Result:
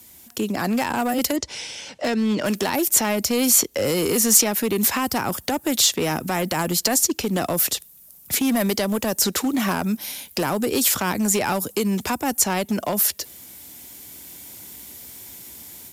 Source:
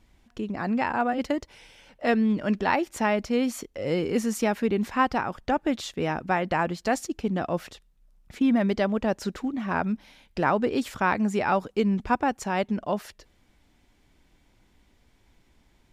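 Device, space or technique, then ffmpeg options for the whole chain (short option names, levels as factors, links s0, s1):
FM broadcast chain: -filter_complex "[0:a]equalizer=f=390:w=0.35:g=6,asettb=1/sr,asplit=3[s0][s1][s2];[s0]atrim=end=1.364[s3];[s1]atrim=start=1.36:end=2.46,asetpts=PTS-STARTPTS,afade=t=in:d=0.004:c=qsin,afade=t=out:st=1.096:d=0.004:c=qsin,lowpass=f=6500:w=0.5412,lowpass=f=6500:w=1.3066[s4];[s2]atrim=start=2.456[s5];[s3][s4]acrossfade=d=0.004:c1=hsin:c2=qsin[s6];[s6][s5]acrossfade=d=0.004:c1=qsin:c2=hsin,highpass=f=65:w=0.5412,highpass=f=65:w=1.3066,dynaudnorm=f=690:g=3:m=2.24,acrossover=split=120|350|6500[s7][s8][s9][s10];[s7]acompressor=threshold=0.01:ratio=4[s11];[s8]acompressor=threshold=0.0447:ratio=4[s12];[s9]acompressor=threshold=0.0562:ratio=4[s13];[s10]acompressor=threshold=0.002:ratio=4[s14];[s11][s12][s13][s14]amix=inputs=4:normalize=0,aemphasis=mode=production:type=75fm,alimiter=limit=0.15:level=0:latency=1:release=75,asoftclip=type=hard:threshold=0.1,lowpass=f=15000:w=0.5412,lowpass=f=15000:w=1.3066,aemphasis=mode=production:type=75fm,volume=1.58"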